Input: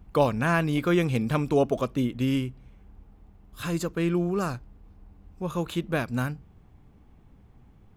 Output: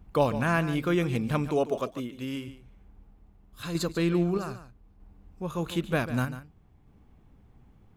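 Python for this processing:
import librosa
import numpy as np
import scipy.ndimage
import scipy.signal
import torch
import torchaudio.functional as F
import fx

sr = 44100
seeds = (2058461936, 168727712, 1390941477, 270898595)

y = fx.low_shelf(x, sr, hz=180.0, db=-11.5, at=(1.49, 2.48))
y = fx.tremolo_random(y, sr, seeds[0], hz=1.6, depth_pct=55)
y = fx.peak_eq(y, sr, hz=4100.0, db=11.5, octaves=0.28, at=(3.63, 4.44))
y = y + 10.0 ** (-13.0 / 20.0) * np.pad(y, (int(144 * sr / 1000.0), 0))[:len(y)]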